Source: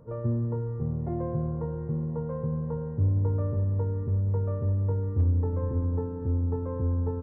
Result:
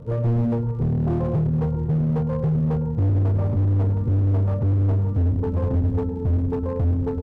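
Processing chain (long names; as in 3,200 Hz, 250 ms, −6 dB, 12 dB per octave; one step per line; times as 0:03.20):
reverb reduction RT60 1.1 s
surface crackle 86 per second −44 dBFS
in parallel at −1 dB: brickwall limiter −25 dBFS, peak gain reduction 8 dB
on the sum: low-pass filter 1,400 Hz 6 dB per octave
low-shelf EQ 170 Hz +3.5 dB
slap from a distant wall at 19 metres, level −9 dB
on a send at −7 dB: convolution reverb RT60 0.75 s, pre-delay 118 ms
on the sum: hard clipping −23.5 dBFS, distortion −8 dB
low-shelf EQ 350 Hz +4.5 dB
level +2 dB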